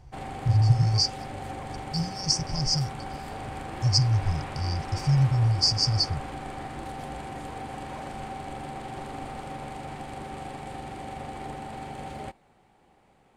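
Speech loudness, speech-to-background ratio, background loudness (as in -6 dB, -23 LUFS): -25.0 LUFS, 12.5 dB, -37.5 LUFS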